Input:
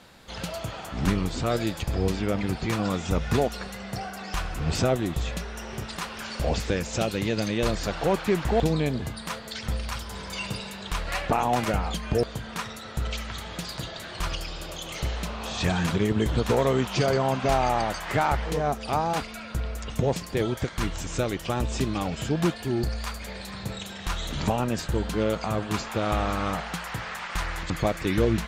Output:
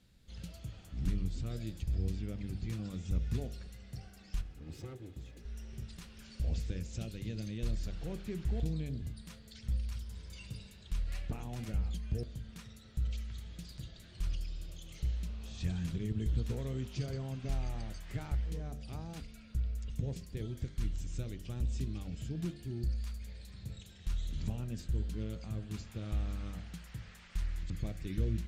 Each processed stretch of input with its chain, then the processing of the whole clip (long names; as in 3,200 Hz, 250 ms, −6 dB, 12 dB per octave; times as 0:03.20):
0:04.41–0:05.45: lower of the sound and its delayed copy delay 2.4 ms + high-pass filter 140 Hz + high-shelf EQ 2,200 Hz −8.5 dB
whole clip: guitar amp tone stack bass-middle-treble 10-0-1; hum removal 49.24 Hz, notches 15; level +4 dB